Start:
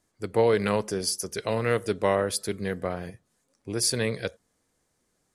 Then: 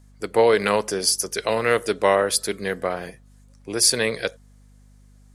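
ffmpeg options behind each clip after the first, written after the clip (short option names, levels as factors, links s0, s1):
-af "highpass=f=490:p=1,aeval=exprs='val(0)+0.00126*(sin(2*PI*50*n/s)+sin(2*PI*2*50*n/s)/2+sin(2*PI*3*50*n/s)/3+sin(2*PI*4*50*n/s)/4+sin(2*PI*5*50*n/s)/5)':c=same,volume=2.51"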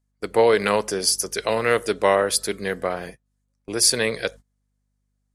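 -af "agate=range=0.0794:threshold=0.0126:ratio=16:detection=peak"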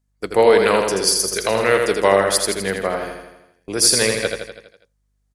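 -af "aecho=1:1:82|164|246|328|410|492|574:0.562|0.315|0.176|0.0988|0.0553|0.031|0.0173,volume=1.33"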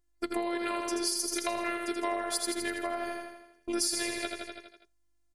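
-af "acompressor=threshold=0.0501:ratio=4,afftfilt=real='hypot(re,im)*cos(PI*b)':imag='0':win_size=512:overlap=0.75"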